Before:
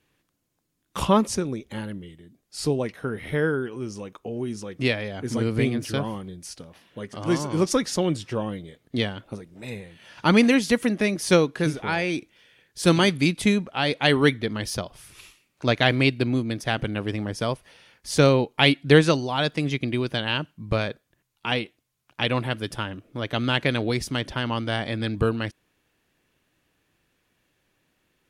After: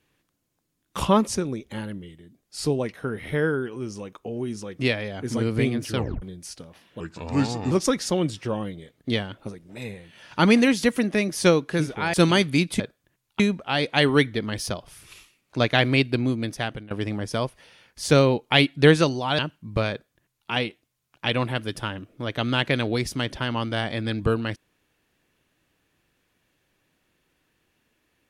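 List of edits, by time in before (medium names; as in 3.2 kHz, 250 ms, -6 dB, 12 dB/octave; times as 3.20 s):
5.95 s: tape stop 0.27 s
7.00–7.58 s: speed 81%
12.00–12.81 s: delete
16.58–16.98 s: fade out, to -20.5 dB
19.46–20.34 s: delete
20.86–21.46 s: copy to 13.47 s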